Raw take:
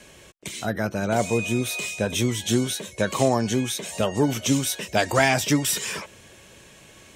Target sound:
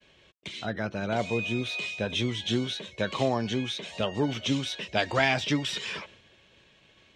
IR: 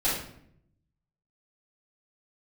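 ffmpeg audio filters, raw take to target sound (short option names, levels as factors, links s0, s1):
-af "agate=range=0.0224:threshold=0.00708:ratio=3:detection=peak,lowpass=f=3600:t=q:w=1.9,volume=0.501"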